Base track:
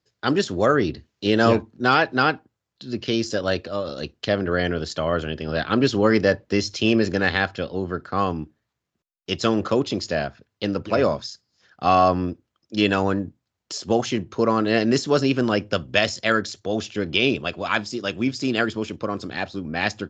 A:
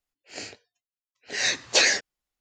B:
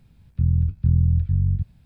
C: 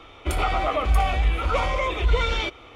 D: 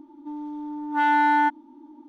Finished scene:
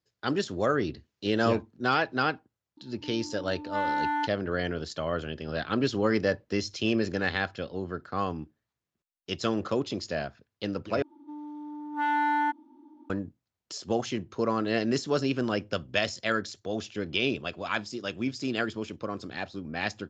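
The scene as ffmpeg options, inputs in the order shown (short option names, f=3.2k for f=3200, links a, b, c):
-filter_complex "[4:a]asplit=2[a][b];[0:a]volume=-7.5dB[c];[b]highpass=45[d];[c]asplit=2[e][f];[e]atrim=end=11.024[g];[d]atrim=end=2.08,asetpts=PTS-STARTPTS,volume=-6.5dB[h];[f]atrim=start=13.096[i];[a]atrim=end=2.08,asetpts=PTS-STARTPTS,volume=-9dB,afade=t=in:d=0.004:c=hsin,afade=t=out:st=2.076:d=0.004:c=hsin,adelay=2770[j];[g][h]acrossfade=d=0.004:c1=hsin:c2=hsin[k];[k][i]acrossfade=d=0.004:c1=hsin:c2=hsin[l];[l][j]amix=inputs=2:normalize=0"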